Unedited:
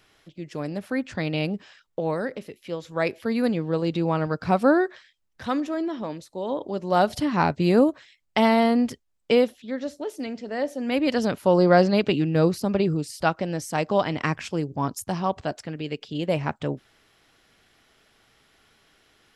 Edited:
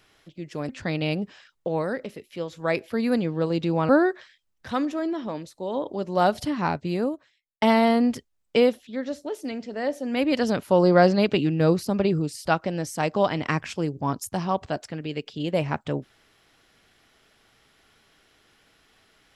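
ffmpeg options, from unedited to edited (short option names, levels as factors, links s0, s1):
-filter_complex "[0:a]asplit=4[s0][s1][s2][s3];[s0]atrim=end=0.692[s4];[s1]atrim=start=1.008:end=4.212[s5];[s2]atrim=start=4.638:end=8.37,asetpts=PTS-STARTPTS,afade=t=out:st=2.262:d=1.47[s6];[s3]atrim=start=8.37,asetpts=PTS-STARTPTS,afade=t=in:d=0.004:c=hsin[s7];[s4][s5]acrossfade=d=0.004:c1=hsin:c2=hsin[s8];[s6][s7]concat=n=2:v=0:a=1[s9];[s8][s9]acrossfade=d=0.004:c1=hsin:c2=hsin"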